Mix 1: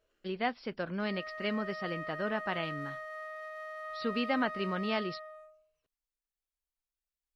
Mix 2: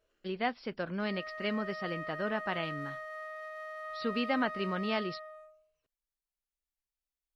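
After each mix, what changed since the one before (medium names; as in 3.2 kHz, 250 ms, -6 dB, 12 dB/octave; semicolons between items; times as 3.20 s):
no change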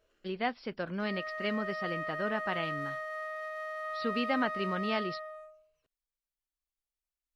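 background +4.0 dB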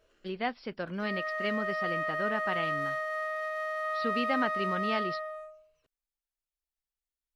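background +5.0 dB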